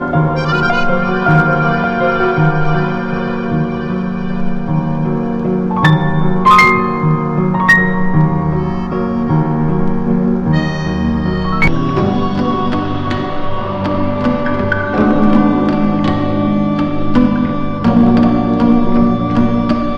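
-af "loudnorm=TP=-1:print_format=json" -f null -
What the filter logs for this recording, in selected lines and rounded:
"input_i" : "-13.6",
"input_tp" : "-1.2",
"input_lra" : "4.3",
"input_thresh" : "-23.6",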